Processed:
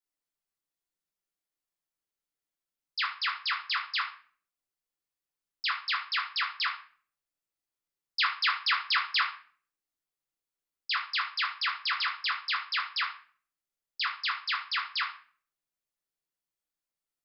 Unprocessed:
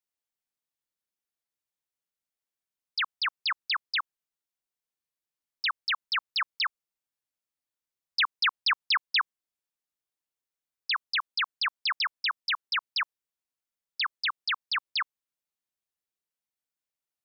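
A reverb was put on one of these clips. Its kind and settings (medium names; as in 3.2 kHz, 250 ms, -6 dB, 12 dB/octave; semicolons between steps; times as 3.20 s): simulated room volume 47 m³, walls mixed, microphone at 0.76 m; trim -4.5 dB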